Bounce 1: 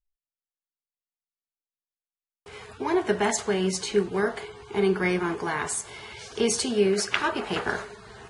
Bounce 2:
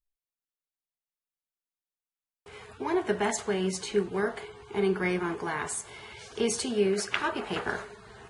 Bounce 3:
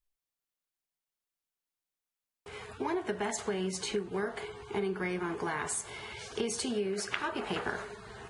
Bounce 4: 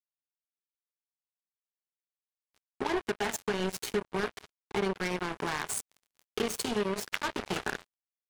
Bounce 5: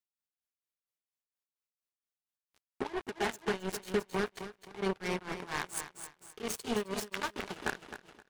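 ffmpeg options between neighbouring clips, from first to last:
ffmpeg -i in.wav -af "equalizer=frequency=5200:width=1.5:gain=-3,volume=-3.5dB" out.wav
ffmpeg -i in.wav -af "acompressor=threshold=-32dB:ratio=6,volume=2dB" out.wav
ffmpeg -i in.wav -af "acrusher=bits=4:mix=0:aa=0.5,volume=1.5dB" out.wav
ffmpeg -i in.wav -filter_complex "[0:a]asplit=2[link_01][link_02];[link_02]aecho=0:1:262|524|786|1048:0.316|0.117|0.0433|0.016[link_03];[link_01][link_03]amix=inputs=2:normalize=0,tremolo=f=4.3:d=0.89" out.wav

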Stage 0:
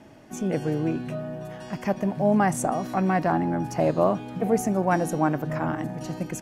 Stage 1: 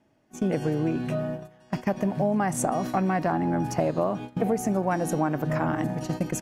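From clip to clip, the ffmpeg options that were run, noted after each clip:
ffmpeg -i in.wav -af "agate=range=-21dB:threshold=-33dB:ratio=16:detection=peak,acompressor=threshold=-26dB:ratio=6,volume=4.5dB" out.wav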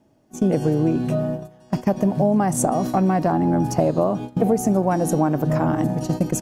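ffmpeg -i in.wav -af "equalizer=frequency=2000:width=0.83:gain=-9.5,volume=7dB" out.wav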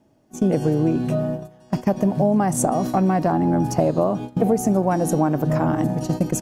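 ffmpeg -i in.wav -af anull out.wav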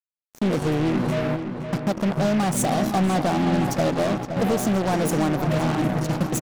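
ffmpeg -i in.wav -filter_complex "[0:a]acrusher=bits=3:mix=0:aa=0.5,asoftclip=type=tanh:threshold=-16.5dB,asplit=2[link_01][link_02];[link_02]adelay=518,lowpass=frequency=3300:poles=1,volume=-8dB,asplit=2[link_03][link_04];[link_04]adelay=518,lowpass=frequency=3300:poles=1,volume=0.5,asplit=2[link_05][link_06];[link_06]adelay=518,lowpass=frequency=3300:poles=1,volume=0.5,asplit=2[link_07][link_08];[link_08]adelay=518,lowpass=frequency=3300:poles=1,volume=0.5,asplit=2[link_09][link_10];[link_10]adelay=518,lowpass=frequency=3300:poles=1,volume=0.5,asplit=2[link_11][link_12];[link_12]adelay=518,lowpass=frequency=3300:poles=1,volume=0.5[link_13];[link_01][link_03][link_05][link_07][link_09][link_11][link_13]amix=inputs=7:normalize=0" out.wav

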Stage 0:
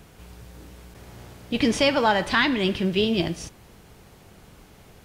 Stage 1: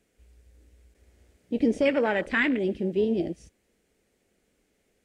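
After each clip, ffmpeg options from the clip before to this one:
ffmpeg -i in.wav -af "afwtdn=0.0501,equalizer=frequency=125:width_type=o:width=1:gain=-9,equalizer=frequency=250:width_type=o:width=1:gain=7,equalizer=frequency=500:width_type=o:width=1:gain=8,equalizer=frequency=1000:width_type=o:width=1:gain=-8,equalizer=frequency=2000:width_type=o:width=1:gain=8,equalizer=frequency=8000:width_type=o:width=1:gain=9,volume=-7.5dB" out.wav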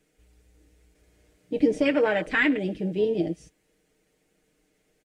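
ffmpeg -i in.wav -af "aecho=1:1:6.5:0.71" out.wav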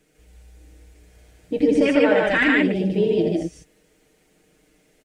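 ffmpeg -i in.wav -filter_complex "[0:a]asplit=2[link_01][link_02];[link_02]acompressor=threshold=-30dB:ratio=6,volume=-0.5dB[link_03];[link_01][link_03]amix=inputs=2:normalize=0,aecho=1:1:84.55|148.7:0.562|0.891" out.wav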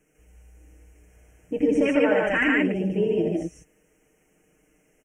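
ffmpeg -i in.wav -af "asuperstop=centerf=4100:order=12:qfactor=1.7,volume=-3.5dB" out.wav

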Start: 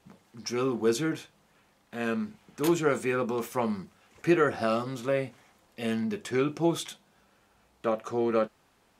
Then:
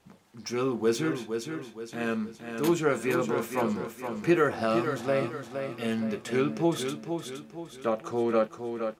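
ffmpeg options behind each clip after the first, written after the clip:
ffmpeg -i in.wav -filter_complex "[0:a]aecho=1:1:467|934|1401|1868|2335:0.447|0.192|0.0826|0.0355|0.0153,acrossover=split=3700[link_01][link_02];[link_02]asoftclip=type=tanh:threshold=-31dB[link_03];[link_01][link_03]amix=inputs=2:normalize=0" out.wav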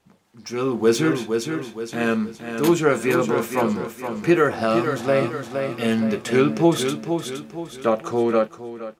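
ffmpeg -i in.wav -af "dynaudnorm=framelen=120:gausssize=11:maxgain=12dB,volume=-2dB" out.wav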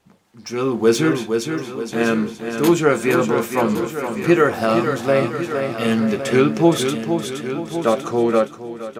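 ffmpeg -i in.wav -af "aecho=1:1:1112:0.282,volume=2.5dB" out.wav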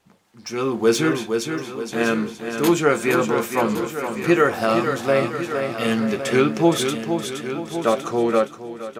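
ffmpeg -i in.wav -af "lowshelf=frequency=470:gain=-4" out.wav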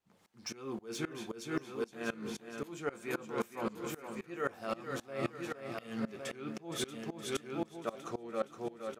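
ffmpeg -i in.wav -af "areverse,acompressor=threshold=-28dB:ratio=12,areverse,aeval=exprs='val(0)*pow(10,-23*if(lt(mod(-3.8*n/s,1),2*abs(-3.8)/1000),1-mod(-3.8*n/s,1)/(2*abs(-3.8)/1000),(mod(-3.8*n/s,1)-2*abs(-3.8)/1000)/(1-2*abs(-3.8)/1000))/20)':channel_layout=same" out.wav

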